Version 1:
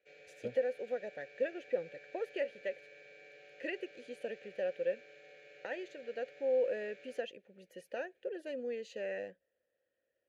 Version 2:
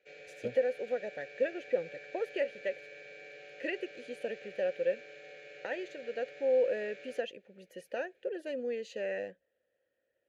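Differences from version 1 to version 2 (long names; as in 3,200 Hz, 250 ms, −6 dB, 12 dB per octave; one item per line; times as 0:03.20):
speech +3.5 dB
background +6.5 dB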